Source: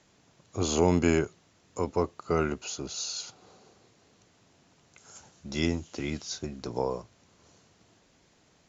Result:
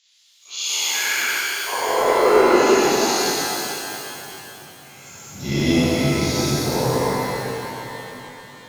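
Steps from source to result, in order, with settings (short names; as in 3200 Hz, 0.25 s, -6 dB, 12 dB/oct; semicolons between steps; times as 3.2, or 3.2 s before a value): spectral dilation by 0.24 s; high-pass sweep 3500 Hz -> 120 Hz, 0.36–3.42; crackling interface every 0.12 s, samples 512, zero, from 0.32; shimmer reverb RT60 3.3 s, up +12 st, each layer -8 dB, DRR -9.5 dB; gain -5 dB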